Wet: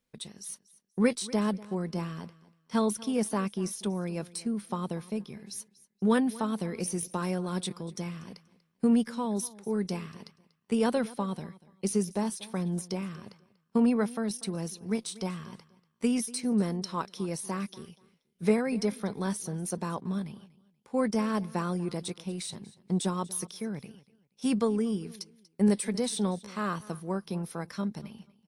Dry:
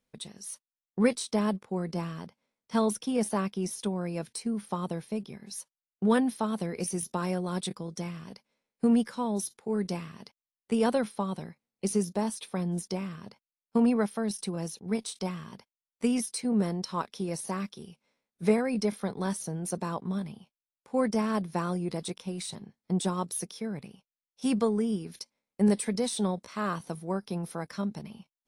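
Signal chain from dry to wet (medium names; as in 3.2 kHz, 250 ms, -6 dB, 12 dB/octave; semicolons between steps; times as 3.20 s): peaking EQ 690 Hz -3 dB 0.77 oct; on a send: feedback delay 240 ms, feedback 23%, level -20 dB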